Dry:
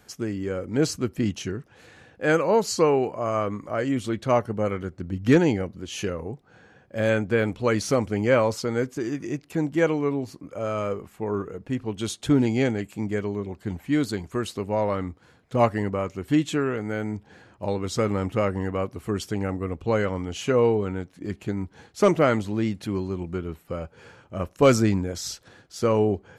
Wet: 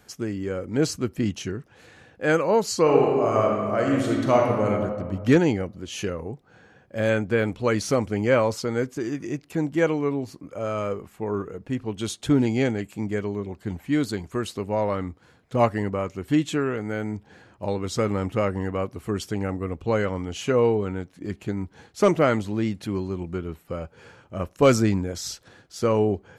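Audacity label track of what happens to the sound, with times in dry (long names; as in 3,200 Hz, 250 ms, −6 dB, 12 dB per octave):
2.810000	4.670000	thrown reverb, RT60 1.7 s, DRR −1 dB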